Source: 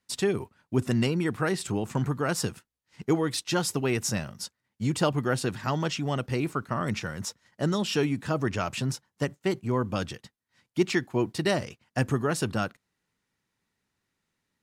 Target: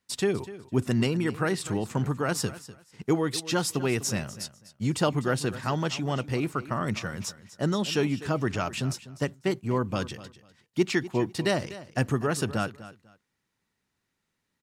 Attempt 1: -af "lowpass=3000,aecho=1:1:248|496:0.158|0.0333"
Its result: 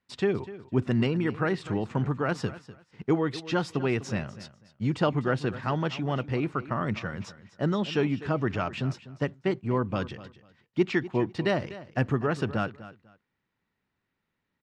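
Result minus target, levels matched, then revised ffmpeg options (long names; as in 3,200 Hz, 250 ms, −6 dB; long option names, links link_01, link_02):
4,000 Hz band −5.0 dB
-af "aecho=1:1:248|496:0.158|0.0333"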